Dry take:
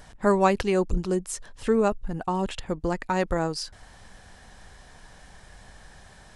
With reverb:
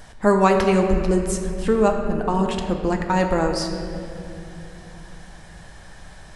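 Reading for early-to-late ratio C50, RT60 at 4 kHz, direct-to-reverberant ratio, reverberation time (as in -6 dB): 5.0 dB, 1.7 s, 3.0 dB, 2.8 s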